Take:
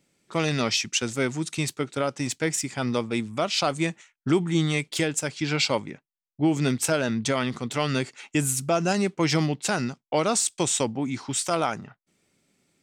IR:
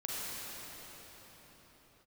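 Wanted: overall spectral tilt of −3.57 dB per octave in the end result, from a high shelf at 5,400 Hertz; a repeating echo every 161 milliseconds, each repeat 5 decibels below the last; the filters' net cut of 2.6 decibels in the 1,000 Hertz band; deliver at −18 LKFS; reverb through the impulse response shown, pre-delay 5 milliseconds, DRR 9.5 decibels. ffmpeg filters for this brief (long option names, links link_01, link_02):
-filter_complex "[0:a]equalizer=frequency=1000:width_type=o:gain=-4,highshelf=frequency=5400:gain=4,aecho=1:1:161|322|483|644|805|966|1127:0.562|0.315|0.176|0.0988|0.0553|0.031|0.0173,asplit=2[link_01][link_02];[1:a]atrim=start_sample=2205,adelay=5[link_03];[link_02][link_03]afir=irnorm=-1:irlink=0,volume=-14dB[link_04];[link_01][link_04]amix=inputs=2:normalize=0,volume=5.5dB"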